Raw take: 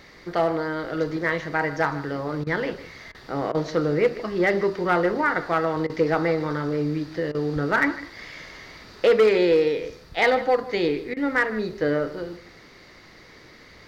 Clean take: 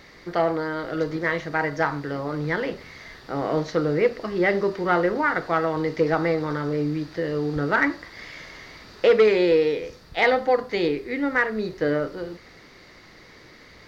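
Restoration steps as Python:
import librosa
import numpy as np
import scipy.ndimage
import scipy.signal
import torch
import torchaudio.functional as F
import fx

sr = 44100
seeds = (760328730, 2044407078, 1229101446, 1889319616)

y = fx.fix_declip(x, sr, threshold_db=-12.0)
y = fx.fix_interpolate(y, sr, at_s=(2.44, 3.12, 3.52, 5.87, 7.32, 11.14), length_ms=25.0)
y = fx.fix_echo_inverse(y, sr, delay_ms=153, level_db=-16.5)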